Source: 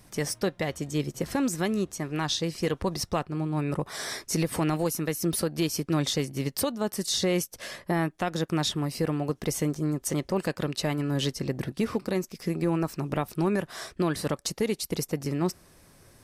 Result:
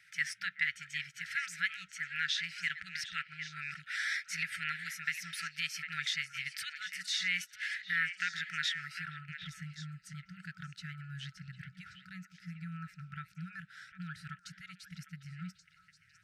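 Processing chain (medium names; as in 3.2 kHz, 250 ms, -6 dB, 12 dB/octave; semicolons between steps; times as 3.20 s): band-pass sweep 2 kHz -> 650 Hz, 8.77–9.37 s; repeats whose band climbs or falls 376 ms, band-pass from 870 Hz, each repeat 1.4 oct, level -5 dB; FFT band-reject 190–1300 Hz; trim +6.5 dB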